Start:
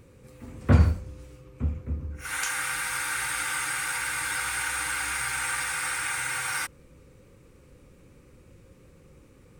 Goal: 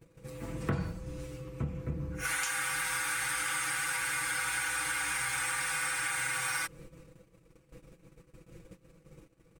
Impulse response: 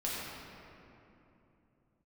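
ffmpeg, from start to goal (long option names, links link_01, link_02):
-af "agate=range=-25dB:threshold=-51dB:ratio=16:detection=peak,aecho=1:1:6.1:0.8,acompressor=threshold=-34dB:ratio=6,volume=3.5dB"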